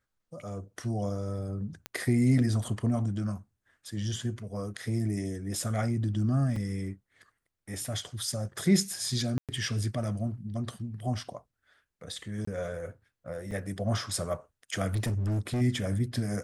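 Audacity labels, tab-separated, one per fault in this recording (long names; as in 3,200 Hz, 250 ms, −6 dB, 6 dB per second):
1.860000	1.860000	click −19 dBFS
6.560000	6.560000	drop-out 3.6 ms
9.380000	9.490000	drop-out 107 ms
12.450000	12.470000	drop-out 24 ms
13.510000	13.510000	drop-out 4.6 ms
14.940000	15.620000	clipping −26 dBFS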